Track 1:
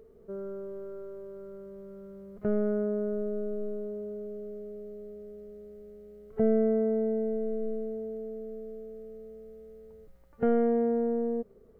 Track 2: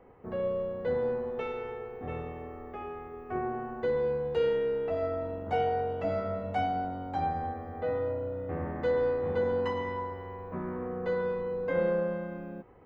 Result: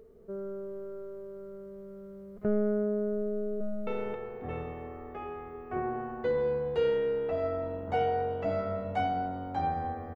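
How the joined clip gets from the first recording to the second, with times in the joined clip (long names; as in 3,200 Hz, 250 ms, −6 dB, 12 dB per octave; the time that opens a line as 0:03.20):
track 1
0:03.33–0:03.87: delay throw 270 ms, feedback 20%, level −1.5 dB
0:03.87: continue with track 2 from 0:01.46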